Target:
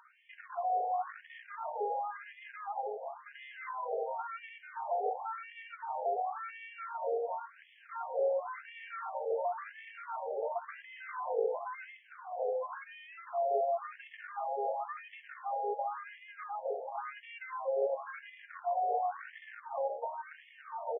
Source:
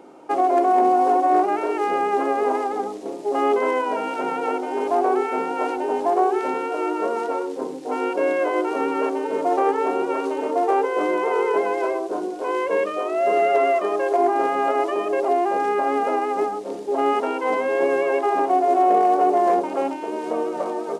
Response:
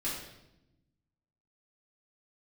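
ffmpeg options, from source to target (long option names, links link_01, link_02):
-filter_complex "[0:a]acrossover=split=440[link_01][link_02];[link_02]acompressor=threshold=-32dB:ratio=10[link_03];[link_01][link_03]amix=inputs=2:normalize=0,volume=21.5dB,asoftclip=hard,volume=-21.5dB,asplit=5[link_04][link_05][link_06][link_07][link_08];[link_05]adelay=420,afreqshift=120,volume=-20dB[link_09];[link_06]adelay=840,afreqshift=240,volume=-25.4dB[link_10];[link_07]adelay=1260,afreqshift=360,volume=-30.7dB[link_11];[link_08]adelay=1680,afreqshift=480,volume=-36.1dB[link_12];[link_04][link_09][link_10][link_11][link_12]amix=inputs=5:normalize=0,asplit=2[link_13][link_14];[1:a]atrim=start_sample=2205[link_15];[link_14][link_15]afir=irnorm=-1:irlink=0,volume=-19.5dB[link_16];[link_13][link_16]amix=inputs=2:normalize=0,afftfilt=real='re*between(b*sr/1024,590*pow(2500/590,0.5+0.5*sin(2*PI*0.94*pts/sr))/1.41,590*pow(2500/590,0.5+0.5*sin(2*PI*0.94*pts/sr))*1.41)':imag='im*between(b*sr/1024,590*pow(2500/590,0.5+0.5*sin(2*PI*0.94*pts/sr))/1.41,590*pow(2500/590,0.5+0.5*sin(2*PI*0.94*pts/sr))*1.41)':win_size=1024:overlap=0.75,volume=-2dB"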